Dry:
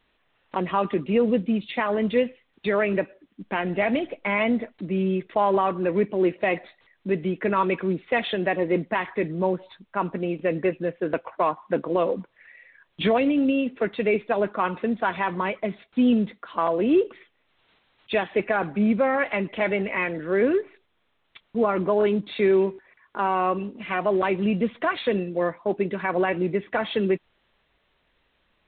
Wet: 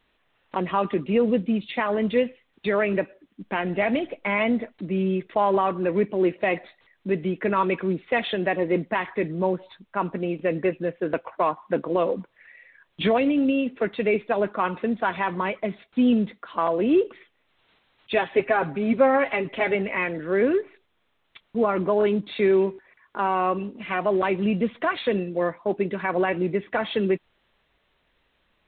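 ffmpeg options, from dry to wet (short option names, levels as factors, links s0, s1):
-filter_complex "[0:a]asettb=1/sr,asplit=3[s0][s1][s2];[s0]atrim=end=18.164[s3];[s1]atrim=start=18.16:end=19.75,asetpts=PTS-STARTPTS,afade=t=in:d=0.004:c=qsin,afade=t=out:st=1.586:d=0.004:c=qsin,aecho=1:1:7.4:0.65,atrim=end_sample=70119[s4];[s2]atrim=start=19.746[s5];[s3][s4]acrossfade=d=0.004:c1=hsin:c2=qsin[s6];[s6][s5]acrossfade=d=0.004:c1=qsin:c2=hsin"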